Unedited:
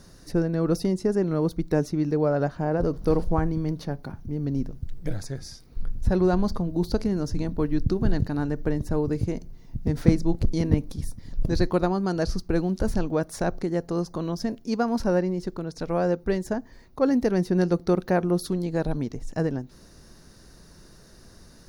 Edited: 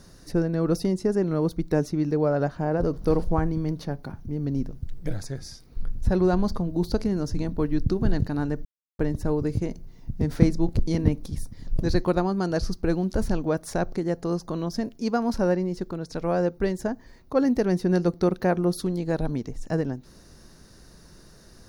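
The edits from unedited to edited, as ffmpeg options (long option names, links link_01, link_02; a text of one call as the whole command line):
ffmpeg -i in.wav -filter_complex "[0:a]asplit=2[link_01][link_02];[link_01]atrim=end=8.65,asetpts=PTS-STARTPTS,afade=type=out:start_time=8.646:duration=0.004:curve=hsin,apad=pad_dur=0.34[link_03];[link_02]atrim=start=8.65,asetpts=PTS-STARTPTS,afade=type=in:duration=0.004:curve=hsin[link_04];[link_03][link_04]concat=n=2:v=0:a=1" out.wav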